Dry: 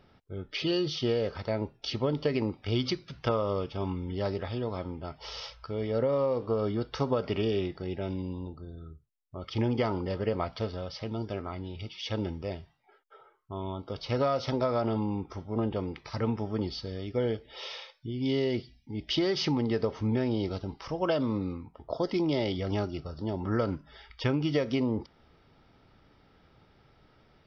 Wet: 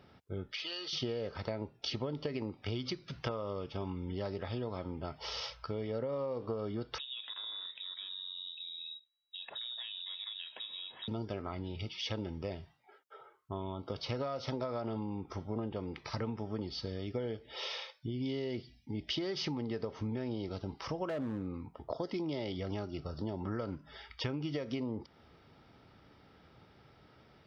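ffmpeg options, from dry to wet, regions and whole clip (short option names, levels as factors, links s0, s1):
-filter_complex "[0:a]asettb=1/sr,asplit=3[s0][s1][s2];[s0]atrim=end=0.524[s3];[s1]atrim=start=0.52:end=0.93,asetpts=PTS-STARTPTS,afade=t=in:d=0.004:c=qsin,afade=t=out:st=0.406:d=0.004:c=qsin,highpass=1000,acompressor=threshold=0.0141:ratio=4:attack=3.2:release=140:knee=1:detection=peak[s4];[s2]atrim=start=0.926[s5];[s3][s4]acrossfade=d=0.004:c1=hsin:c2=qsin[s6];[s6][s5]acrossfade=d=0.004:c1=qsin:c2=hsin,asettb=1/sr,asplit=3[s7][s8][s9];[s7]atrim=end=6.984[s10];[s8]atrim=start=6.98:end=11.08,asetpts=PTS-STARTPTS,afade=t=in:d=0.004:c=qsin,afade=t=out:st=4.096:d=0.004:c=qsin,acompressor=threshold=0.00794:ratio=6:attack=3.2:release=140:knee=1:detection=peak,lowpass=f=3300:t=q:w=0.5098,lowpass=f=3300:t=q:w=0.6013,lowpass=f=3300:t=q:w=0.9,lowpass=f=3300:t=q:w=2.563,afreqshift=-3900[s11];[s9]atrim=start=11.076[s12];[s10][s11]acrossfade=d=0.004:c1=hsin:c2=qsin[s13];[s13][s12]acrossfade=d=0.004:c1=qsin:c2=hsin,asettb=1/sr,asplit=3[s14][s15][s16];[s14]atrim=end=21.094[s17];[s15]atrim=start=21.09:end=21.54,asetpts=PTS-STARTPTS,afade=t=in:d=0.004:c=qsin,afade=t=out:st=0.446:d=0.004:c=qsin,lowpass=2100,volume=18.8,asoftclip=hard,volume=0.0531[s18];[s16]atrim=start=21.536[s19];[s17][s18]acrossfade=d=0.004:c1=hsin:c2=qsin[s20];[s20][s19]acrossfade=d=0.004:c1=qsin:c2=hsin,highpass=65,acompressor=threshold=0.0178:ratio=6,volume=1.12"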